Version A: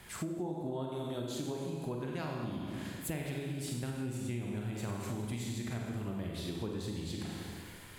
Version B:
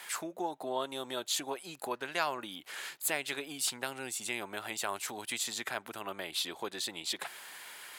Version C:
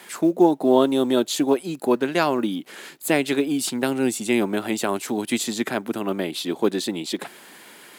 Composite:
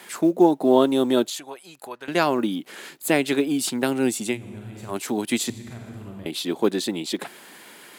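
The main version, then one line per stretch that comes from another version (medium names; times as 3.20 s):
C
1.30–2.08 s: from B
4.33–4.92 s: from A, crossfade 0.10 s
5.50–6.26 s: from A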